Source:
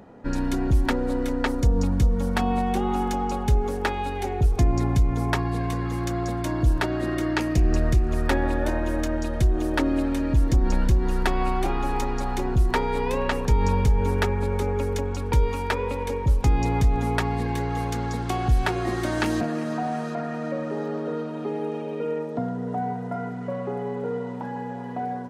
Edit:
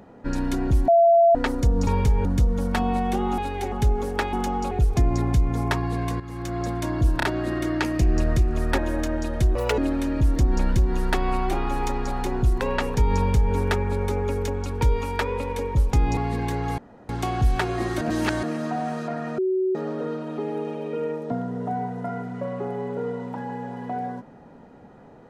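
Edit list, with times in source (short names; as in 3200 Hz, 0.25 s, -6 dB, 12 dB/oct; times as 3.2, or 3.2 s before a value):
0.88–1.35 bleep 678 Hz -12 dBFS
3–3.38 swap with 3.99–4.33
5.82–6.27 fade in, from -12.5 dB
6.79 stutter 0.03 s, 3 plays
8.34–8.78 cut
9.55–9.91 speed 156%
12.74–13.12 cut
13.67–14.05 copy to 1.87
16.68–17.24 cut
17.85–18.16 room tone
19.08–19.5 reverse
20.45–20.82 bleep 375 Hz -19.5 dBFS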